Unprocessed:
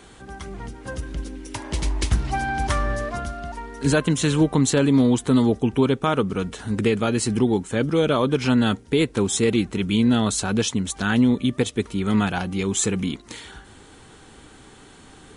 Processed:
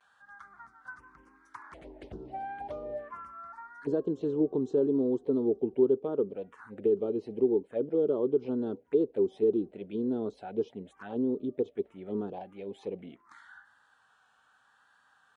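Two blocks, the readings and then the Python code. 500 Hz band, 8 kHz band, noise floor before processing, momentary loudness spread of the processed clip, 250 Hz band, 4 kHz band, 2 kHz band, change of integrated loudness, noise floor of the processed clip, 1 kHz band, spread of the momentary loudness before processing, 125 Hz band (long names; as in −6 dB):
−4.0 dB, below −40 dB, −48 dBFS, 19 LU, −11.5 dB, below −30 dB, below −20 dB, −9.0 dB, −67 dBFS, −15.0 dB, 15 LU, −22.0 dB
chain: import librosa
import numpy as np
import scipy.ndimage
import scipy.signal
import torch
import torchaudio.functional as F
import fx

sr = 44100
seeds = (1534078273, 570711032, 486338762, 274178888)

y = fx.env_phaser(x, sr, low_hz=330.0, high_hz=2200.0, full_db=-16.5)
y = fx.vibrato(y, sr, rate_hz=0.82, depth_cents=56.0)
y = fx.auto_wah(y, sr, base_hz=400.0, top_hz=1800.0, q=4.4, full_db=-18.0, direction='down')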